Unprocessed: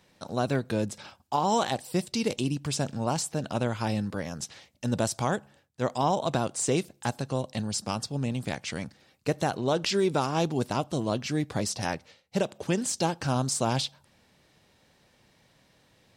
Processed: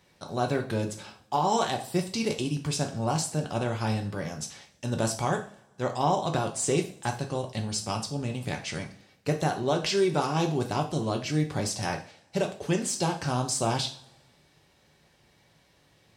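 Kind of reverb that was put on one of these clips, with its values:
coupled-rooms reverb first 0.39 s, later 1.7 s, from −25 dB, DRR 2.5 dB
level −1.5 dB

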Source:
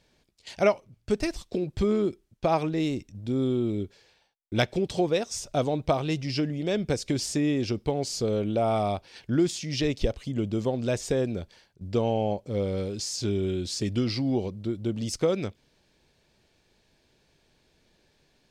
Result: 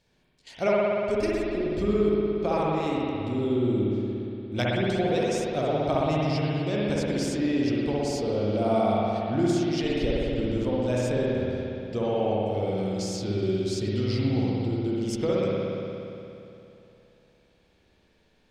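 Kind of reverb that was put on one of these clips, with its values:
spring reverb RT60 2.9 s, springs 58 ms, chirp 70 ms, DRR −6 dB
level −5 dB

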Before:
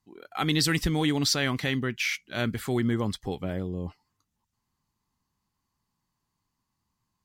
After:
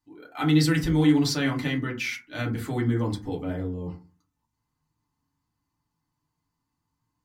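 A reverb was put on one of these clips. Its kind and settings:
feedback delay network reverb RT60 0.34 s, low-frequency decay 1.4×, high-frequency decay 0.4×, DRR −3 dB
level −5.5 dB

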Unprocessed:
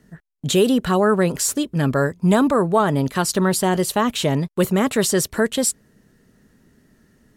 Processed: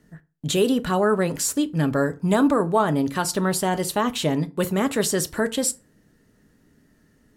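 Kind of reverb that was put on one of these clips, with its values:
feedback delay network reverb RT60 0.32 s, low-frequency decay 1.1×, high-frequency decay 0.65×, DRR 10 dB
level −3.5 dB

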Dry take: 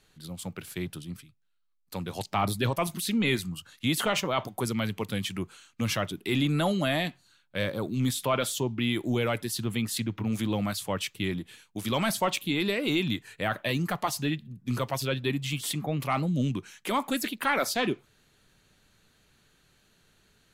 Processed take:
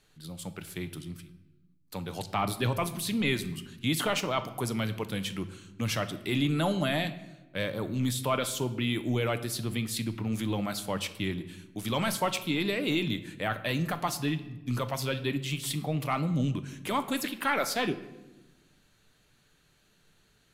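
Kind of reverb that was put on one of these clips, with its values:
rectangular room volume 480 cubic metres, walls mixed, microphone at 0.4 metres
level −2 dB

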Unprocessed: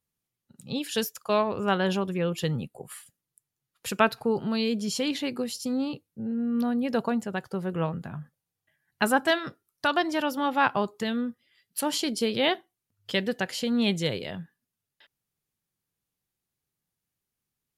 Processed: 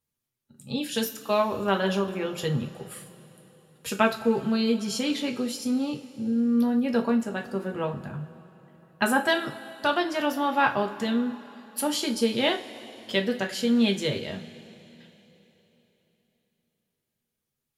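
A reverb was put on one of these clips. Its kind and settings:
coupled-rooms reverb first 0.26 s, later 3.7 s, from −21 dB, DRR 2 dB
level −1.5 dB

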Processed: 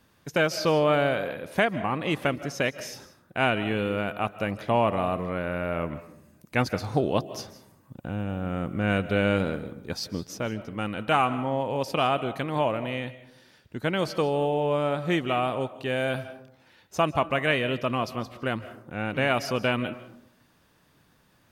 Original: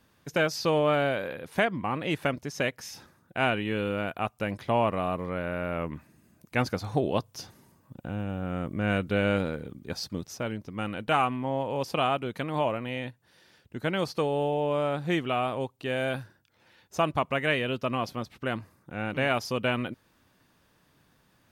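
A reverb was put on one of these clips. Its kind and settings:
comb and all-pass reverb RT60 0.7 s, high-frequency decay 0.4×, pre-delay 115 ms, DRR 14 dB
level +2 dB

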